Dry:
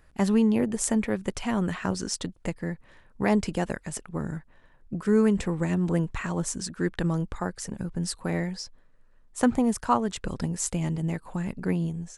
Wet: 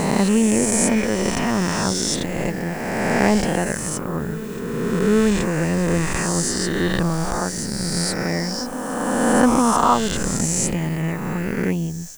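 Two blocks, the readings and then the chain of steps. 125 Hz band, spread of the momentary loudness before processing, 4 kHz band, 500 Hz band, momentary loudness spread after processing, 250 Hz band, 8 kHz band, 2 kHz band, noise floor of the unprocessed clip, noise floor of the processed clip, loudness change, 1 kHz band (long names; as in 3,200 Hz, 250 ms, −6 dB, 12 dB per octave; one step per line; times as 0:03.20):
+6.0 dB, 11 LU, +12.0 dB, +8.0 dB, 8 LU, +6.0 dB, +11.5 dB, +11.0 dB, −57 dBFS, −28 dBFS, +7.5 dB, +10.0 dB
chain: peak hold with a rise ahead of every peak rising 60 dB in 2.37 s
backwards echo 825 ms −16 dB
background noise violet −51 dBFS
level +3.5 dB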